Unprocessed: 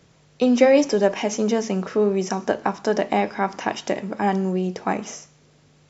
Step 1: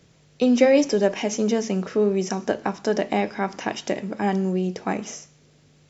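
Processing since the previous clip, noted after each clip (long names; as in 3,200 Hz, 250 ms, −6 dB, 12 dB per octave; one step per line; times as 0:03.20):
parametric band 1,000 Hz −5 dB 1.3 octaves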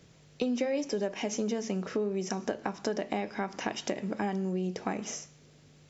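downward compressor 5 to 1, threshold −27 dBFS, peak gain reduction 14.5 dB
level −1.5 dB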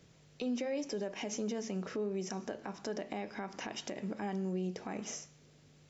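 brickwall limiter −24 dBFS, peak gain reduction 8 dB
level −4 dB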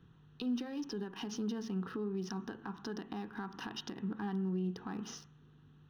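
adaptive Wiener filter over 9 samples
phaser with its sweep stopped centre 2,200 Hz, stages 6
level +3 dB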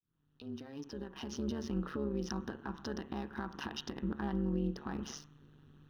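fade in at the beginning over 1.75 s
amplitude modulation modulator 140 Hz, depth 70%
level +5 dB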